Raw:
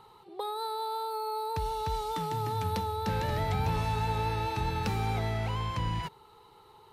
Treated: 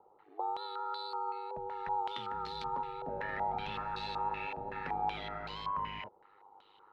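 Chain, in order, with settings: high-pass 370 Hz 6 dB/octave; ring modulator 50 Hz; step-sequenced low-pass 5.3 Hz 640–4200 Hz; trim -5 dB

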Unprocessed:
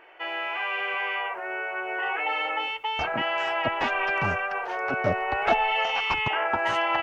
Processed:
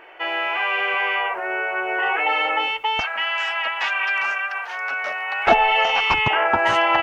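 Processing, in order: 3.00–5.47 s: high-pass 1.4 kHz 12 dB/octave; trim +7 dB

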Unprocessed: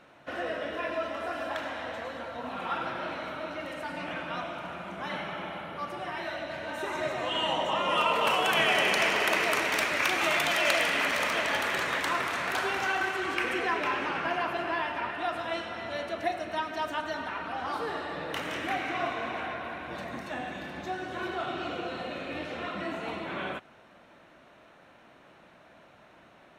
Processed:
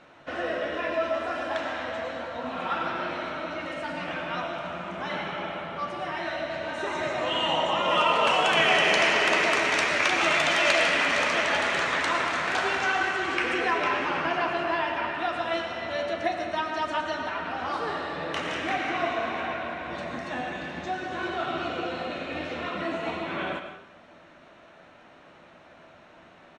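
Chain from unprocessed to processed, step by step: low-pass 8 kHz 24 dB/octave; doubling 12 ms -10.5 dB; on a send: reverberation RT60 0.65 s, pre-delay 75 ms, DRR 7 dB; on the sum: trim +2.5 dB

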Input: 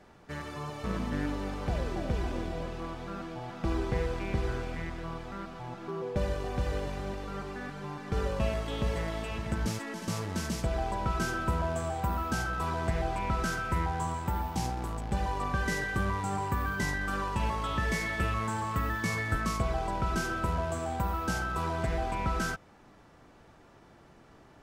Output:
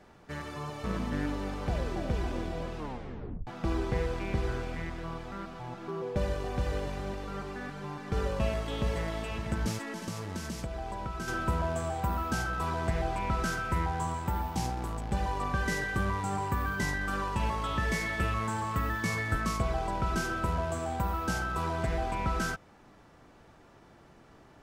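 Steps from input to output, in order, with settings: 2.77 s: tape stop 0.70 s; 10.00–11.28 s: compression 4:1, threshold -34 dBFS, peak gain reduction 8 dB

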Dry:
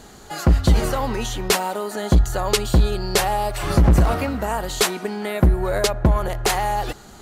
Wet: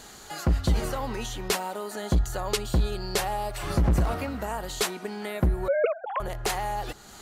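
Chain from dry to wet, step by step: 5.68–6.20 s: formants replaced by sine waves; tape noise reduction on one side only encoder only; trim -8 dB

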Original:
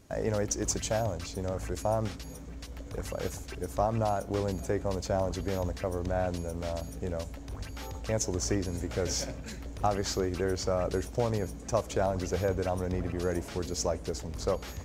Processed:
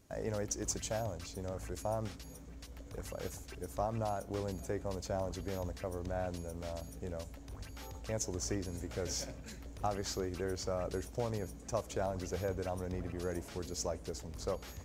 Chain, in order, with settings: treble shelf 8.3 kHz +5 dB; trim -7.5 dB

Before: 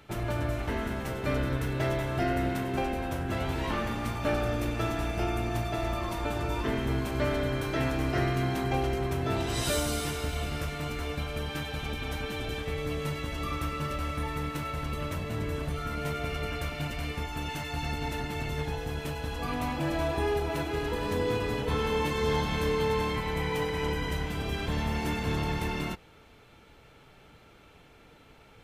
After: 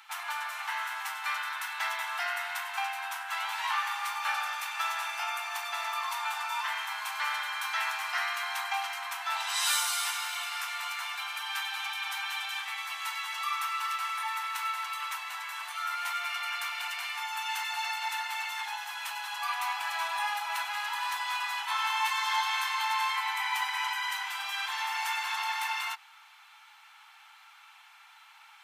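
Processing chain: steep high-pass 810 Hz 72 dB/octave; trim +5 dB

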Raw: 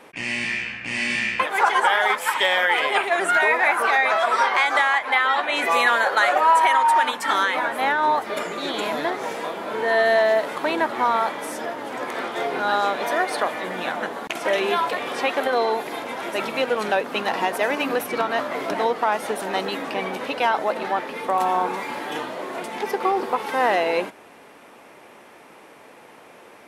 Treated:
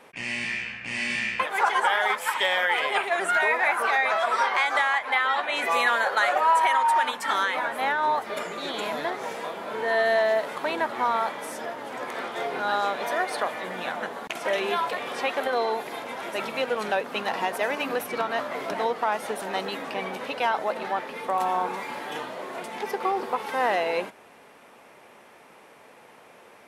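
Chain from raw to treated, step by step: peaking EQ 310 Hz -5 dB 0.42 oct; trim -4 dB

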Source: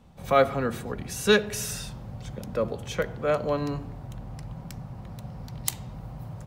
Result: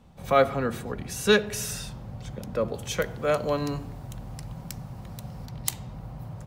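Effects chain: 2.74–5.46 s: treble shelf 4.2 kHz +9.5 dB

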